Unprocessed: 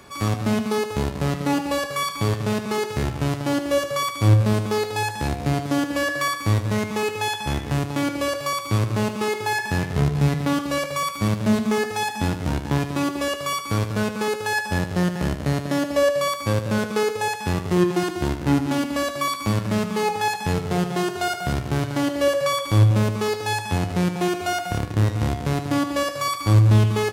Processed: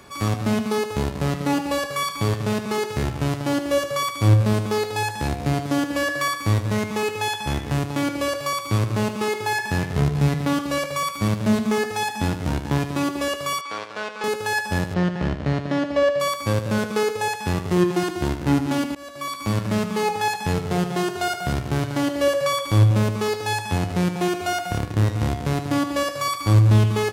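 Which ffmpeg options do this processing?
-filter_complex "[0:a]asettb=1/sr,asplit=3[a][b][c];[a]atrim=end=13.614[d];[b]atrim=start=13.61:end=14.24,asetpts=PTS-STARTPTS,afade=t=in:d=0.004:c=qsin,afade=t=out:st=0.626:d=0.004:c=qsin,highpass=620,lowpass=4.5k[e];[c]atrim=start=14.236[f];[d][e]acrossfade=d=0.004:c1=hsin:c2=qsin[g];[g][f]acrossfade=d=0.004:c1=qsin:c2=hsin,asettb=1/sr,asplit=3[h][i][j];[h]atrim=end=14.944[k];[i]atrim=start=14.94:end=16.2,asetpts=PTS-STARTPTS,afade=t=in:d=0.004:c=qsin,afade=t=out:st=1.256:d=0.004:c=qsin,lowpass=3.8k[l];[j]atrim=start=16.196[m];[k][l]acrossfade=d=0.004:c1=hsin:c2=qsin[n];[n][m]acrossfade=d=0.004:c1=qsin:c2=hsin,asplit=2[o][p];[o]atrim=end=18.95,asetpts=PTS-STARTPTS,afade=t=out:st=18.946:d=0.004:c=hsin:silence=0.0630957[q];[p]atrim=start=18.95,asetpts=PTS-STARTPTS,afade=t=in:d=0.64:silence=0.0630957[r];[q][r]concat=n=2:v=0:a=1"

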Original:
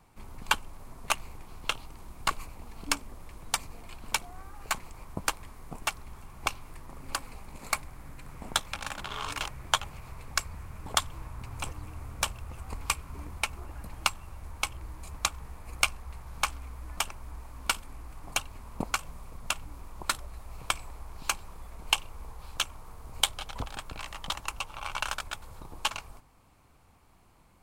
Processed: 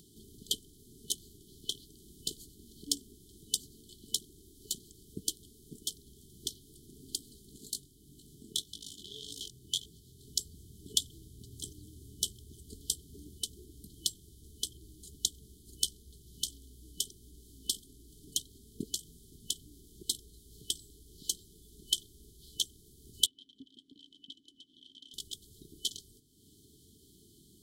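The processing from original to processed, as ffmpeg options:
-filter_complex "[0:a]asettb=1/sr,asplit=3[a][b][c];[a]atrim=end=7.704[d];[b]atrim=start=7.7:end=10.25,asetpts=PTS-STARTPTS,afade=t=in:d=0.004:c=qsin,afade=t=out:st=2.546:d=0.004:c=qsin,flanger=delay=18:depth=7.3:speed=1.8[e];[c]atrim=start=10.246[f];[d][e]acrossfade=d=0.004:c1=hsin:c2=qsin[g];[g][f]acrossfade=d=0.004:c1=qsin:c2=hsin,asettb=1/sr,asplit=3[h][i][j];[h]atrim=end=23.264[k];[i]atrim=start=23.26:end=25.14,asetpts=PTS-STARTPTS,afade=t=in:d=0.004:c=qsin,afade=t=out:st=1.876:d=0.004:c=qsin,asplit=3[l][m][n];[l]bandpass=f=270:t=q:w=8,volume=0dB[o];[m]bandpass=f=2.29k:t=q:w=8,volume=-6dB[p];[n]bandpass=f=3.01k:t=q:w=8,volume=-9dB[q];[o][p][q]amix=inputs=3:normalize=0[r];[j]atrim=start=25.136[s];[k][r]acrossfade=d=0.004:c1=hsin:c2=qsin[t];[t][s]acrossfade=d=0.004:c1=qsin:c2=hsin,highpass=f=280:p=1,afftfilt=real='re*(1-between(b*sr/4096,450,3000))':imag='im*(1-between(b*sr/4096,450,3000))':win_size=4096:overlap=0.75,acompressor=mode=upward:threshold=-50dB:ratio=2.5"

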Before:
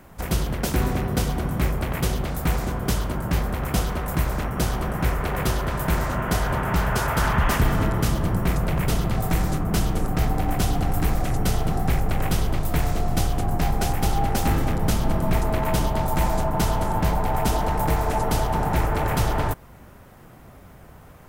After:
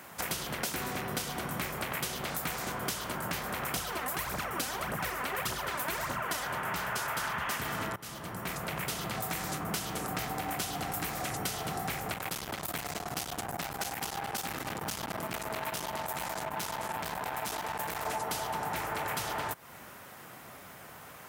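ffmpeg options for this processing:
-filter_complex "[0:a]asettb=1/sr,asplit=3[a][b][c];[a]atrim=end=3.764[d];[b]atrim=start=3.76:end=6.45,asetpts=PTS-STARTPTS,afade=t=in:d=0.004:c=qsin,afade=t=out:st=2.686:d=0.004:c=qsin,aphaser=in_gain=1:out_gain=1:delay=4.1:decay=0.58:speed=1.7:type=triangular[e];[c]atrim=start=6.446[f];[d][e]acrossfade=d=0.004:c1=hsin:c2=qsin[g];[g][f]acrossfade=d=0.004:c1=qsin:c2=hsin,asettb=1/sr,asplit=3[h][i][j];[h]atrim=end=12.144[k];[i]atrim=start=12.14:end=18.06,asetpts=PTS-STARTPTS,afade=t=in:d=0.004:c=qsin,afade=t=out:st=5.916:d=0.004:c=qsin,aeval=exprs='(tanh(15.8*val(0)+0.6)-tanh(0.6))/15.8':c=same[l];[j]atrim=start=18.056[m];[k][l]acrossfade=d=0.004:c1=hsin:c2=qsin[n];[n][m]acrossfade=d=0.004:c1=qsin:c2=hsin,asplit=2[o][p];[o]atrim=end=7.96,asetpts=PTS-STARTPTS,afade=t=out:st=7.956:d=0.004:c=hsin:silence=0.0841395[q];[p]atrim=start=7.96,asetpts=PTS-STARTPTS,afade=t=in:d=1.66:silence=0.0841395[r];[q][r]concat=n=2:v=0:a=1,highpass=120,tiltshelf=f=710:g=-7,acompressor=threshold=-32dB:ratio=6"

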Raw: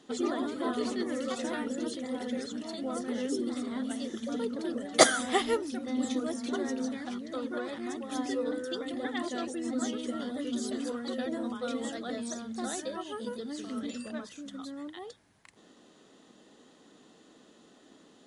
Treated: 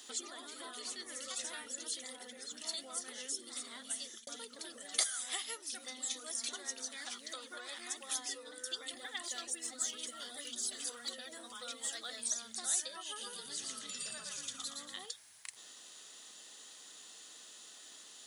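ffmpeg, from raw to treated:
-filter_complex "[0:a]asettb=1/sr,asplit=3[a][b][c];[a]atrim=end=0.824[d];[b]atrim=start=0.82:end=1.66,asetpts=PTS-STARTPTS,afade=t=in:d=0.004:c=qsin,afade=t=out:st=0.836:d=0.004:c=qsin,aeval=exprs='val(0)+0.00251*(sin(2*PI*60*n/s)+sin(2*PI*2*60*n/s)/2+sin(2*PI*3*60*n/s)/3+sin(2*PI*4*60*n/s)/4+sin(2*PI*5*60*n/s)/5)':c=same[e];[c]atrim=start=1.656[f];[d][e]acrossfade=d=0.004:c1=hsin:c2=qsin[g];[g][f]acrossfade=d=0.004:c1=qsin:c2=hsin,asettb=1/sr,asplit=3[h][i][j];[h]atrim=end=2.164[k];[i]atrim=start=2.16:end=2.57,asetpts=PTS-STARTPTS,afade=t=in:d=0.004:c=qsin,afade=t=out:st=0.406:d=0.004:c=qsin,equalizer=f=5.7k:w=0.35:g=-8[l];[j]atrim=start=2.566[m];[k][l]acrossfade=d=0.004:c1=hsin:c2=qsin[n];[n][m]acrossfade=d=0.004:c1=qsin:c2=hsin,asettb=1/sr,asplit=3[o][p][q];[o]atrim=end=5.024[r];[p]atrim=start=5.02:end=8.21,asetpts=PTS-STARTPTS,afade=t=in:d=0.004:c=qsin,afade=t=out:st=3.186:d=0.004:c=qsin,equalizer=f=68:t=o:w=2:g=-12[s];[q]atrim=start=8.206[t];[r][s]acrossfade=d=0.004:c1=hsin:c2=qsin[u];[u][t]acrossfade=d=0.004:c1=qsin:c2=hsin,asettb=1/sr,asplit=3[v][w][x];[v]atrim=end=8.934[y];[w]atrim=start=8.93:end=12.3,asetpts=PTS-STARTPTS,afade=t=in:d=0.004:c=qsin,afade=t=out:st=3.366:d=0.004:c=qsin,aphaser=in_gain=1:out_gain=1:delay=2.7:decay=0.3:speed=1.8:type=sinusoidal[z];[x]atrim=start=12.296[aa];[y][z]acrossfade=d=0.004:c1=hsin:c2=qsin[ab];[ab][aa]acrossfade=d=0.004:c1=qsin:c2=hsin,asettb=1/sr,asplit=3[ac][ad][ae];[ac]atrim=end=13.044[af];[ad]atrim=start=13.04:end=15.06,asetpts=PTS-STARTPTS,afade=t=in:d=0.004:c=qsin,afade=t=out:st=2.016:d=0.004:c=qsin,asplit=7[ag][ah][ai][aj][ak][al][am];[ah]adelay=117,afreqshift=-38,volume=-3.5dB[an];[ai]adelay=234,afreqshift=-76,volume=-9.9dB[ao];[aj]adelay=351,afreqshift=-114,volume=-16.3dB[ap];[ak]adelay=468,afreqshift=-152,volume=-22.6dB[aq];[al]adelay=585,afreqshift=-190,volume=-29dB[ar];[am]adelay=702,afreqshift=-228,volume=-35.4dB[as];[ag][an][ao][ap][aq][ar][as]amix=inputs=7:normalize=0,atrim=end_sample=89082[at];[ae]atrim=start=15.056[au];[af][at]acrossfade=d=0.004:c1=hsin:c2=qsin[av];[av][au]acrossfade=d=0.004:c1=qsin:c2=hsin,asplit=2[aw][ax];[aw]atrim=end=4.27,asetpts=PTS-STARTPTS,afade=t=out:st=3.7:d=0.57:c=qsin[ay];[ax]atrim=start=4.27,asetpts=PTS-STARTPTS,afade=t=in:d=0.004:c=hsin[az];[ay][az]concat=n=2:v=0:a=1,asubboost=boost=5:cutoff=100,acompressor=threshold=-43dB:ratio=5,aderivative,volume=16dB"

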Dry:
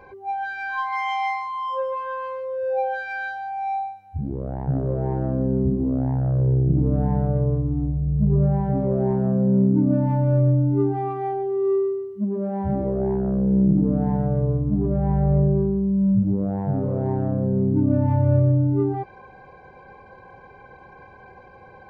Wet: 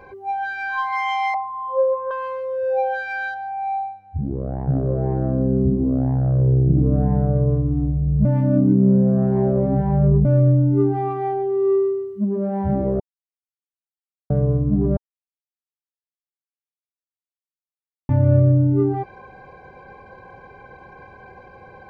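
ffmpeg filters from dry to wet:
-filter_complex "[0:a]asettb=1/sr,asplit=3[a][b][c];[a]atrim=end=1.344[d];[b]atrim=start=1.34:end=2.11,asetpts=PTS-STARTPTS,afade=t=in:d=0.004:c=qsin,afade=t=out:st=0.766:d=0.004:c=qsin,lowpass=f=680:t=q:w=2.4[e];[c]atrim=start=2.106[f];[d][e]acrossfade=d=0.004:c1=hsin:c2=qsin[g];[g][f]acrossfade=d=0.004:c1=qsin:c2=hsin,asettb=1/sr,asplit=3[h][i][j];[h]atrim=end=3.344[k];[i]atrim=start=3.34:end=7.48,asetpts=PTS-STARTPTS,afade=t=in:d=0.004:c=qsin,afade=t=out:st=4.136:d=0.004:c=qsin,lowpass=f=1.6k:p=1[l];[j]atrim=start=7.476[m];[k][l]acrossfade=d=0.004:c1=hsin:c2=qsin[n];[n][m]acrossfade=d=0.004:c1=qsin:c2=hsin,asplit=7[o][p][q][r][s][t][u];[o]atrim=end=8.252[v];[p]atrim=start=8.248:end=10.252,asetpts=PTS-STARTPTS,areverse[w];[q]atrim=start=10.248:end=13,asetpts=PTS-STARTPTS,afade=t=out:st=2.748:d=0.004:c=hsin[x];[r]atrim=start=13:end=14.3,asetpts=PTS-STARTPTS,volume=0[y];[s]atrim=start=14.3:end=14.97,asetpts=PTS-STARTPTS,afade=t=in:d=0.004:c=hsin,afade=t=out:st=0.666:d=0.004:c=hsin[z];[t]atrim=start=14.97:end=18.09,asetpts=PTS-STARTPTS,volume=0[aa];[u]atrim=start=18.09,asetpts=PTS-STARTPTS,afade=t=in:d=0.004:c=hsin[ab];[v][w]acrossfade=d=0.004:c1=hsin:c2=hsin[ac];[x][y][z][aa][ab]concat=n=5:v=0:a=1[ad];[ac][ad]acrossfade=d=0.004:c1=hsin:c2=hsin,bandreject=f=900:w=9.7,volume=3dB"

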